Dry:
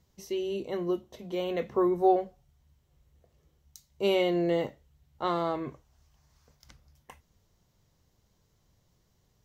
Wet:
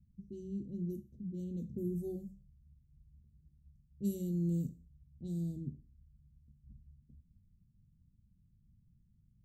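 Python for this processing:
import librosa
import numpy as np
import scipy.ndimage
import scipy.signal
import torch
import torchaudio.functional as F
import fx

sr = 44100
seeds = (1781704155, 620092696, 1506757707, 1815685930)

y = fx.env_lowpass(x, sr, base_hz=370.0, full_db=-24.5)
y = scipy.signal.sosfilt(scipy.signal.cheby1(3, 1.0, [210.0, 7700.0], 'bandstop', fs=sr, output='sos'), y)
y = fx.rev_schroeder(y, sr, rt60_s=0.4, comb_ms=32, drr_db=14.5)
y = y * 10.0 ** (3.5 / 20.0)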